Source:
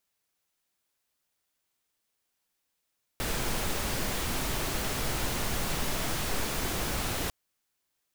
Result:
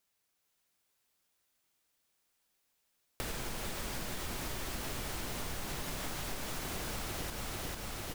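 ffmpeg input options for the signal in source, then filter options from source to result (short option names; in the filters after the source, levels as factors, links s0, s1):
-f lavfi -i "anoisesrc=c=pink:a=0.153:d=4.1:r=44100:seed=1"
-filter_complex "[0:a]asplit=2[s0][s1];[s1]aecho=0:1:446|892|1338|1784|2230|2676|3122:0.631|0.334|0.177|0.0939|0.0498|0.0264|0.014[s2];[s0][s2]amix=inputs=2:normalize=0,acompressor=threshold=0.0158:ratio=6"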